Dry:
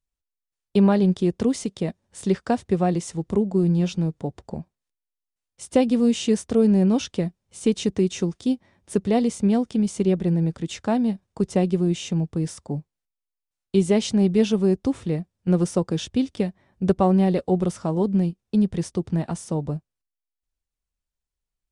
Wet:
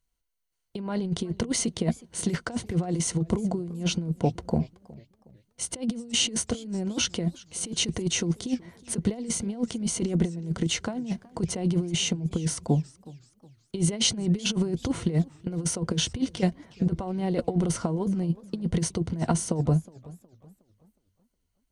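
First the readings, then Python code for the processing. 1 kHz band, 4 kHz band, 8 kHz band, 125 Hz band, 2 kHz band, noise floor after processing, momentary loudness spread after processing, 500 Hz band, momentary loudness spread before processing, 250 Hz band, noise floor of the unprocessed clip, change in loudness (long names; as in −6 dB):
−7.0 dB, +6.0 dB, +7.5 dB, −3.0 dB, +1.0 dB, −75 dBFS, 6 LU, −9.5 dB, 10 LU, −7.0 dB, below −85 dBFS, −5.0 dB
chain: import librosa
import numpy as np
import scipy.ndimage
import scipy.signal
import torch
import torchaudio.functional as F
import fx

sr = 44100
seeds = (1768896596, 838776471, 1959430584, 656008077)

y = fx.ripple_eq(x, sr, per_octave=1.9, db=7)
y = fx.over_compress(y, sr, threshold_db=-25.0, ratio=-0.5)
y = fx.echo_warbled(y, sr, ms=371, feedback_pct=38, rate_hz=2.8, cents=188, wet_db=-21.5)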